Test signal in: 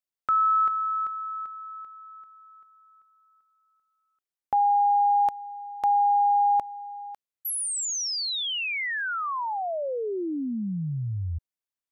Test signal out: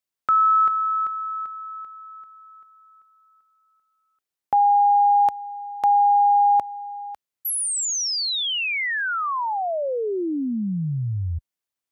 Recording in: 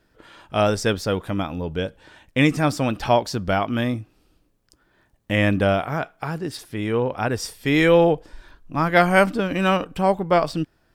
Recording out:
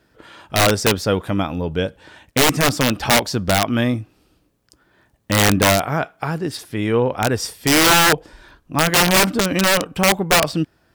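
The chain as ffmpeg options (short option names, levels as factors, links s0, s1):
-af "highpass=52,aeval=exprs='(mod(3.98*val(0)+1,2)-1)/3.98':c=same,volume=1.68"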